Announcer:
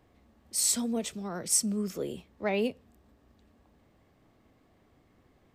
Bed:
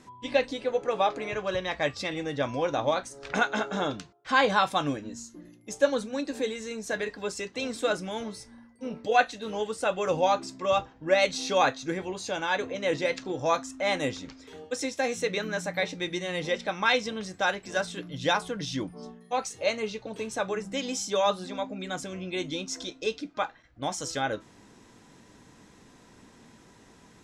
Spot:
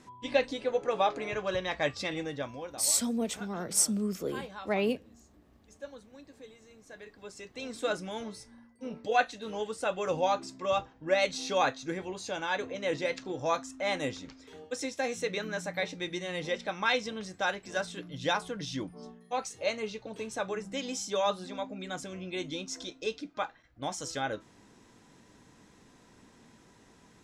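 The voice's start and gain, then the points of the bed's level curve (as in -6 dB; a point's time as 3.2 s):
2.25 s, 0.0 dB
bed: 2.2 s -2 dB
2.92 s -20.5 dB
6.8 s -20.5 dB
7.88 s -4 dB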